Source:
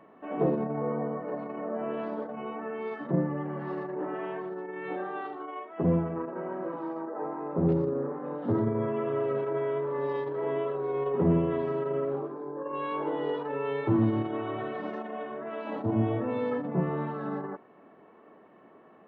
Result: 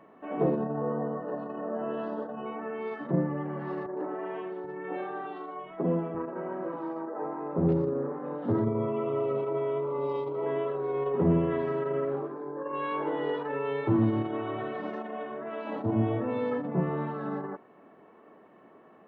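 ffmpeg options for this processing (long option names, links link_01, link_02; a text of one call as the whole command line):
ffmpeg -i in.wav -filter_complex "[0:a]asettb=1/sr,asplit=3[link_01][link_02][link_03];[link_01]atrim=end=0.574[link_04];[link_02]atrim=start=0.57:end=2.46,asetpts=PTS-STARTPTS,afade=type=in:duration=0.004:curve=qsin,afade=type=out:start_time=1.886:duration=0.004:curve=qsin,asuperstop=centerf=2200:order=8:qfactor=4.2[link_05];[link_03]atrim=start=2.456[link_06];[link_04][link_05]acrossfade=duration=0.004:curve1=hsin:curve2=qsin[link_07];[link_07][link_06]acrossfade=duration=0.004:curve1=qsin:curve2=hsin,asettb=1/sr,asplit=3[link_08][link_09][link_10];[link_08]atrim=end=3.864[link_11];[link_09]atrim=start=3.86:end=6.15,asetpts=PTS-STARTPTS,afade=type=in:duration=0.004:curve=qsin,afade=type=out:start_time=2.286:duration=0.004:curve=qsin,acrossover=split=160|1800[link_12][link_13][link_14];[link_14]adelay=110[link_15];[link_12]adelay=780[link_16];[link_16][link_13][link_15]amix=inputs=3:normalize=0,atrim=end_sample=100989[link_17];[link_10]atrim=start=6.146[link_18];[link_11][link_17]acrossfade=duration=0.004:curve1=hsin:curve2=qsin[link_19];[link_19][link_18]acrossfade=duration=0.004:curve1=qsin:curve2=hsin,asettb=1/sr,asplit=3[link_20][link_21][link_22];[link_20]atrim=end=8.644[link_23];[link_21]atrim=start=8.64:end=10.46,asetpts=PTS-STARTPTS,afade=type=in:duration=0.004:curve=qsin,afade=type=out:start_time=1.816:duration=0.004:curve=qsin,asuperstop=centerf=1700:order=4:qfactor=2.8[link_24];[link_22]atrim=start=10.456[link_25];[link_23][link_24]acrossfade=duration=0.004:curve1=hsin:curve2=qsin[link_26];[link_26][link_25]acrossfade=duration=0.004:curve1=qsin:curve2=hsin,asettb=1/sr,asplit=3[link_27][link_28][link_29];[link_27]atrim=end=11.414[link_30];[link_28]atrim=start=11.41:end=13.59,asetpts=PTS-STARTPTS,afade=type=in:duration=0.004:curve=qsin,afade=type=out:start_time=2.176:duration=0.004:curve=qsin,equalizer=frequency=1800:width_type=o:width=0.77:gain=4.5[link_31];[link_29]atrim=start=13.586[link_32];[link_30][link_31]acrossfade=duration=0.004:curve1=hsin:curve2=qsin[link_33];[link_33][link_32]acrossfade=duration=0.004:curve1=qsin:curve2=hsin" out.wav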